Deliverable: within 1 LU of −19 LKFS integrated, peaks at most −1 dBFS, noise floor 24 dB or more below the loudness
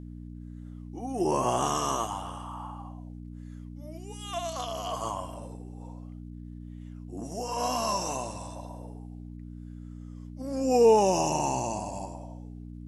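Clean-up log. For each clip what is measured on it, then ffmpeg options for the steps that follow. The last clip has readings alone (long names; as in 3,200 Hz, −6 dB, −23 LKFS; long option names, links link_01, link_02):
mains hum 60 Hz; hum harmonics up to 300 Hz; level of the hum −40 dBFS; integrated loudness −29.0 LKFS; sample peak −11.0 dBFS; target loudness −19.0 LKFS
→ -af "bandreject=frequency=60:width_type=h:width=4,bandreject=frequency=120:width_type=h:width=4,bandreject=frequency=180:width_type=h:width=4,bandreject=frequency=240:width_type=h:width=4,bandreject=frequency=300:width_type=h:width=4"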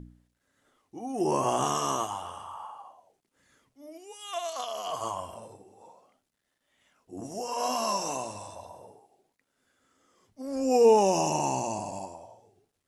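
mains hum none found; integrated loudness −28.5 LKFS; sample peak −11.0 dBFS; target loudness −19.0 LKFS
→ -af "volume=9.5dB"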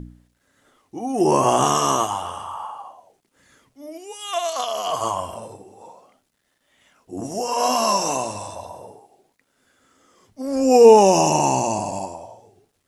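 integrated loudness −19.0 LKFS; sample peak −1.5 dBFS; background noise floor −70 dBFS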